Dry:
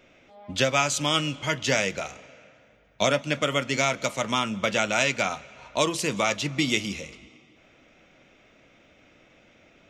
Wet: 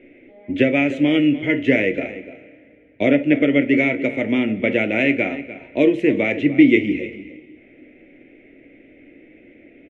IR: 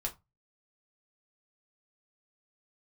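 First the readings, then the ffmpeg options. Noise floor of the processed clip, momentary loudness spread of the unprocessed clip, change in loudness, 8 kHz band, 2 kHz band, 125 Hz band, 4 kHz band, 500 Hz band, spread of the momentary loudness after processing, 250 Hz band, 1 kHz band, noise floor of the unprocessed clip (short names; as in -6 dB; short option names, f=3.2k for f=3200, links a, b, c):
-50 dBFS, 11 LU, +7.0 dB, under -25 dB, +5.5 dB, +3.0 dB, -6.0 dB, +7.5 dB, 13 LU, +15.0 dB, -6.0 dB, -58 dBFS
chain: -filter_complex "[0:a]firequalizer=gain_entry='entry(190,0);entry(280,15);entry(1100,-21);entry(2000,7);entry(4700,-29)':delay=0.05:min_phase=1,asplit=2[a][b];[b]adelay=297.4,volume=-14dB,highshelf=f=4k:g=-6.69[c];[a][c]amix=inputs=2:normalize=0,asplit=2[d][e];[1:a]atrim=start_sample=2205,asetrate=22491,aresample=44100[f];[e][f]afir=irnorm=-1:irlink=0,volume=-11dB[g];[d][g]amix=inputs=2:normalize=0"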